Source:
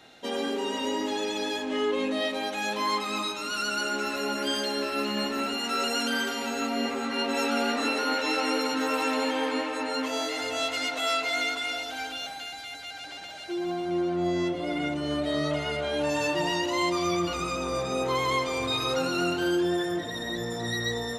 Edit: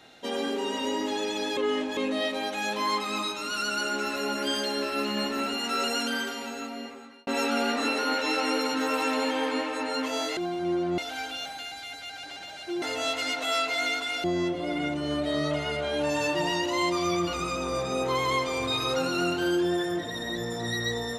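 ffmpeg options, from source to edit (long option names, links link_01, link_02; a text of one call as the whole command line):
ffmpeg -i in.wav -filter_complex "[0:a]asplit=8[link_01][link_02][link_03][link_04][link_05][link_06][link_07][link_08];[link_01]atrim=end=1.572[link_09];[link_02]atrim=start=1.568:end=1.972,asetpts=PTS-STARTPTS,areverse[link_10];[link_03]atrim=start=1.968:end=7.27,asetpts=PTS-STARTPTS,afade=type=out:start_time=3.912:duration=1.39[link_11];[link_04]atrim=start=7.27:end=10.372,asetpts=PTS-STARTPTS,afade=type=in:duration=0.004:curve=hsin[link_12];[link_05]atrim=start=13.628:end=14.242[link_13];[link_06]atrim=start=11.788:end=13.632[link_14];[link_07]atrim=start=10.368:end=11.792[link_15];[link_08]atrim=start=14.238[link_16];[link_09][link_10]acrossfade=duration=0.004:curve1=hsin:curve2=hsin[link_17];[link_11][link_12]concat=n=2:v=0:a=1[link_18];[link_17][link_18]acrossfade=duration=0.004:curve1=hsin:curve2=hsin[link_19];[link_19][link_13]acrossfade=duration=0.004:curve1=hsin:curve2=hsin[link_20];[link_20][link_14]acrossfade=duration=0.004:curve1=hsin:curve2=hsin[link_21];[link_21][link_15]acrossfade=duration=0.004:curve1=hsin:curve2=hsin[link_22];[link_22][link_16]acrossfade=duration=0.004:curve1=hsin:curve2=hsin" out.wav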